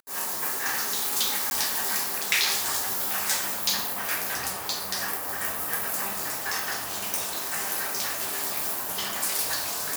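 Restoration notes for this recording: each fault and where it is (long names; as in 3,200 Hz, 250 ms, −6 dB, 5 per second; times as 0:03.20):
0:01.50–0:01.51: drop-out 11 ms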